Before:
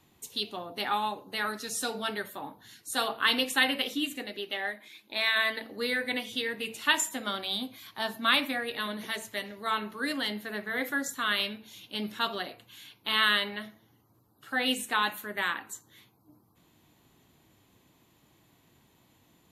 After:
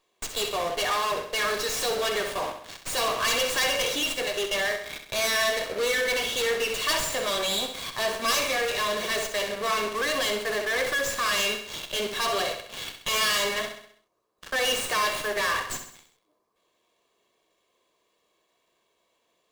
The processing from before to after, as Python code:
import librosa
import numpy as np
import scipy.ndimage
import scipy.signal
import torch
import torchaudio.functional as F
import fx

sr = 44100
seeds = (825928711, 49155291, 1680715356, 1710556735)

p1 = fx.self_delay(x, sr, depth_ms=0.2)
p2 = scipy.signal.sosfilt(scipy.signal.butter(4, 290.0, 'highpass', fs=sr, output='sos'), p1)
p3 = fx.peak_eq(p2, sr, hz=1500.0, db=-5.5, octaves=0.4)
p4 = p3 + 0.73 * np.pad(p3, (int(1.8 * sr / 1000.0), 0))[:len(p3)]
p5 = fx.fuzz(p4, sr, gain_db=47.0, gate_db=-47.0)
p6 = p4 + (p5 * 10.0 ** (-8.0 / 20.0))
p7 = fx.echo_feedback(p6, sr, ms=65, feedback_pct=50, wet_db=-8)
p8 = fx.running_max(p7, sr, window=3)
y = p8 * 10.0 ** (-6.0 / 20.0)